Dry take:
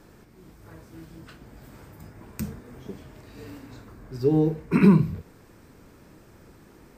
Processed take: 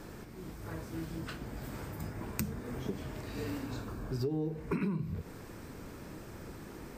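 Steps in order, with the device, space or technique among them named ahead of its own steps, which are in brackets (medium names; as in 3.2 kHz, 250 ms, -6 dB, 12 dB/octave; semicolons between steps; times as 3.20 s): serial compression, leveller first (compression 2.5:1, threshold -25 dBFS, peak gain reduction 9.5 dB; compression 5:1, threshold -37 dBFS, peak gain reduction 15 dB); 3.64–4.22 s: band-stop 2 kHz, Q 6.1; trim +5 dB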